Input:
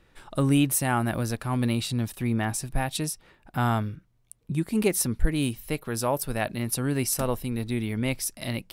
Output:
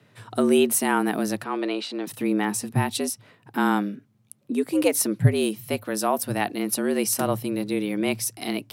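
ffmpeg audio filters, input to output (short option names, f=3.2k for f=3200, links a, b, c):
-filter_complex "[0:a]asettb=1/sr,asplit=3[a][b][c];[a]atrim=end=1.444[d];[b]atrim=start=1.44:end=2.07,asetpts=PTS-STARTPTS,afade=t=in:d=0.004:c=qsin,afade=t=out:st=0.626:d=0.004:c=qsin,highpass=250,lowpass=4k[e];[c]atrim=start=2.066[f];[d][e]acrossfade=d=0.004:c1=hsin:c2=qsin[g];[g][f]acrossfade=d=0.004:c1=qsin:c2=hsin,afreqshift=97,volume=2.5dB"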